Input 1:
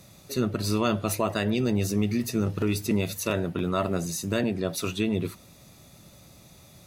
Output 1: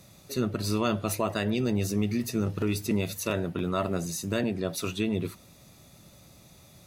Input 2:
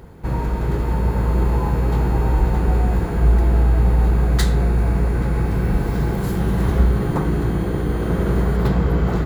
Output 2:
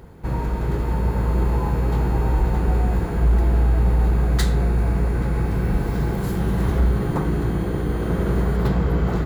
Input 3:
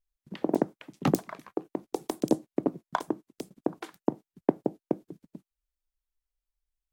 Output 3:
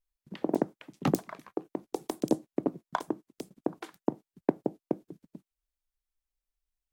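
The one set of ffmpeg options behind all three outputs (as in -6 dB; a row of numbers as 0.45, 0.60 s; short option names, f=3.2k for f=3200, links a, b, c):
-af "volume=9dB,asoftclip=hard,volume=-9dB,volume=-2dB"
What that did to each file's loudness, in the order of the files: -2.0, -2.0, -2.0 LU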